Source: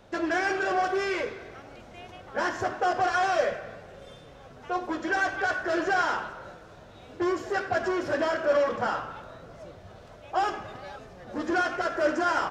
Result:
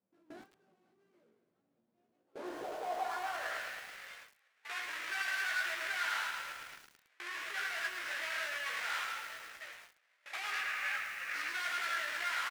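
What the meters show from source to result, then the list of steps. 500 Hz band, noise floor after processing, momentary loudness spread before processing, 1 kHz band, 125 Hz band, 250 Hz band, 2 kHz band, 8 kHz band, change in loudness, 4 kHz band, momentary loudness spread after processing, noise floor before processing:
-20.5 dB, -78 dBFS, 21 LU, -13.5 dB, under -25 dB, -24.0 dB, -5.5 dB, -1.5 dB, -9.5 dB, -1.5 dB, 16 LU, -49 dBFS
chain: half-waves squared off; notches 60/120/180/240/300/360/420 Hz; spectral gain 10.52–11.51, 1100–2900 Hz +8 dB; limiter -22.5 dBFS, peak gain reduction 11 dB; wavefolder -28.5 dBFS; tilt +3.5 dB/oct; doubler 17 ms -4 dB; feedback echo 80 ms, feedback 38%, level -17.5 dB; band-pass sweep 200 Hz -> 1900 Hz, 1.95–3.73; gate with hold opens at -38 dBFS; low shelf 72 Hz -9 dB; lo-fi delay 0.108 s, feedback 80%, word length 8-bit, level -9 dB; gain -1 dB

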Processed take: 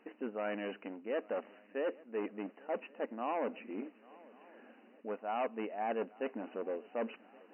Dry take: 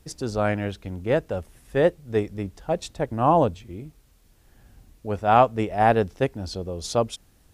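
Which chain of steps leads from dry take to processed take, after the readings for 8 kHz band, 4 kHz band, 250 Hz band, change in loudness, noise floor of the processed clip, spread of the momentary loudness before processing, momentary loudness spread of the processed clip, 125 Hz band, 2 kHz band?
under -40 dB, -18.0 dB, -13.5 dB, -15.5 dB, -63 dBFS, 14 LU, 18 LU, under -30 dB, -13.0 dB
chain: bell 360 Hz -4.5 dB 0.37 oct; reverse; compressor 8:1, threshold -33 dBFS, peak gain reduction 21 dB; reverse; hard clip -32.5 dBFS, distortion -12 dB; brick-wall FIR band-pass 210–3000 Hz; swung echo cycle 1.121 s, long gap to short 3:1, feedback 51%, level -23 dB; gain +2.5 dB

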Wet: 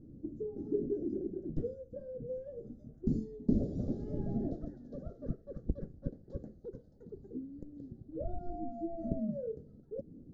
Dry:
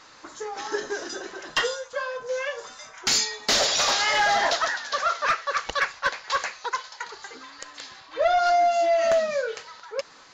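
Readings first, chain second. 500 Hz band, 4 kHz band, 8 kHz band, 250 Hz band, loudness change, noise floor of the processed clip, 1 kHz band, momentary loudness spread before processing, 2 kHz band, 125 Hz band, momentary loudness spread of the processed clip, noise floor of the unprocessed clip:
-14.0 dB, under -40 dB, under -40 dB, +8.0 dB, -15.5 dB, -58 dBFS, -29.0 dB, 18 LU, under -40 dB, +12.0 dB, 13 LU, -50 dBFS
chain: inverse Chebyshev low-pass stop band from 930 Hz, stop band 60 dB; in parallel at -2 dB: compressor, threshold -57 dBFS, peak gain reduction 21 dB; on the sum: gain +10.5 dB

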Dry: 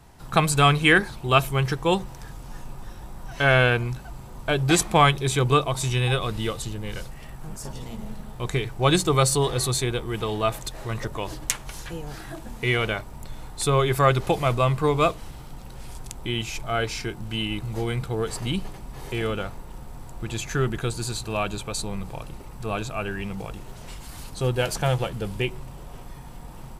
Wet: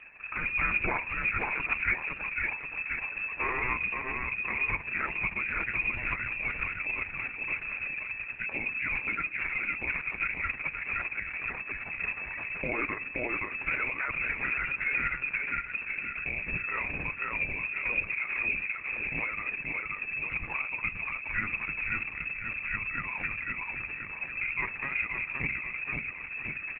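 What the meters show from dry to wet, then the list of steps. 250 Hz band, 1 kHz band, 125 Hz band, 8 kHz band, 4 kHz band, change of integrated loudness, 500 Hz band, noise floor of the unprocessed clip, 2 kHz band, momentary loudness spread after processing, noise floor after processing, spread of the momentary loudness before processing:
-16.0 dB, -12.0 dB, -20.5 dB, under -40 dB, under -20 dB, -7.0 dB, -19.5 dB, -41 dBFS, +0.5 dB, 5 LU, -42 dBFS, 22 LU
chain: limiter -14.5 dBFS, peak gain reduction 11 dB; dynamic EQ 810 Hz, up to -4 dB, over -46 dBFS, Q 6.4; inverted band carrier 2600 Hz; feedback echo 0.523 s, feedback 50%, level -4 dB; AGC gain up to 4 dB; de-hum 63.96 Hz, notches 5; compressor 2:1, threshold -35 dBFS, peak gain reduction 11.5 dB; low shelf 140 Hz +8 dB; Schroeder reverb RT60 0.33 s, combs from 31 ms, DRR 14 dB; Opus 6 kbps 48000 Hz

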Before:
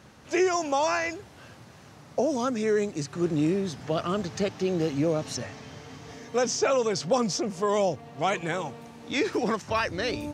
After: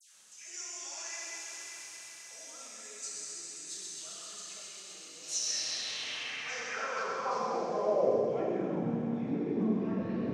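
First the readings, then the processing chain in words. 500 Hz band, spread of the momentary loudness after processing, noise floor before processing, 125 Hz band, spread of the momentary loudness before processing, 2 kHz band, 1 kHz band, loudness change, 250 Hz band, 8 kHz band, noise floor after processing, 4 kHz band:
-8.5 dB, 14 LU, -51 dBFS, -9.0 dB, 11 LU, -8.0 dB, -8.5 dB, -7.5 dB, -7.0 dB, -0.5 dB, -50 dBFS, -3.0 dB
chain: tone controls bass +1 dB, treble -8 dB; reverse; compressor 12:1, threshold -36 dBFS, peak gain reduction 18 dB; reverse; high shelf 4700 Hz +9.5 dB; on a send: thin delay 0.131 s, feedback 81%, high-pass 1700 Hz, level -6.5 dB; on the sum: plate-style reverb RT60 4.2 s, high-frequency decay 0.9×, DRR -7 dB; band-pass sweep 8000 Hz -> 220 Hz, 5.15–8.82; dispersion lows, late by 0.144 s, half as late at 1700 Hz; gain +8 dB

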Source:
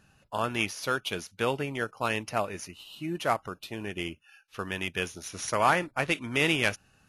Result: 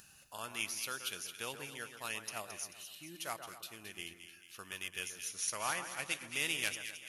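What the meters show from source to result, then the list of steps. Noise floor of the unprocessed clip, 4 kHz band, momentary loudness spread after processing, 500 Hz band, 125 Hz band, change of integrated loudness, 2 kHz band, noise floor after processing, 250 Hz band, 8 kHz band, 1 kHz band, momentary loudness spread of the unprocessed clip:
-66 dBFS, -6.0 dB, 13 LU, -17.5 dB, -19.0 dB, -9.5 dB, -9.5 dB, -61 dBFS, -18.5 dB, +0.5 dB, -14.5 dB, 13 LU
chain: pre-emphasis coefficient 0.9; upward compressor, threshold -49 dBFS; split-band echo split 1800 Hz, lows 0.129 s, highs 0.219 s, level -9 dB

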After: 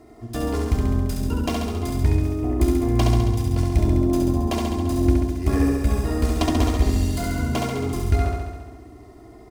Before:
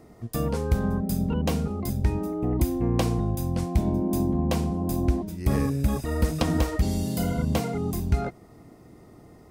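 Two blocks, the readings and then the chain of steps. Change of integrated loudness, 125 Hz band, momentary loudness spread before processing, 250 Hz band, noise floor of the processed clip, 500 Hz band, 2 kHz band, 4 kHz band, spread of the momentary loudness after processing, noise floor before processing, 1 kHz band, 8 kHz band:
+4.0 dB, +4.0 dB, 4 LU, +3.5 dB, -45 dBFS, +3.5 dB, +4.5 dB, +5.0 dB, 6 LU, -51 dBFS, +4.0 dB, +3.0 dB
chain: median filter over 3 samples; comb 2.9 ms, depth 79%; added harmonics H 4 -21 dB, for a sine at -7 dBFS; on a send: flutter echo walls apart 11.7 m, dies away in 1.3 s

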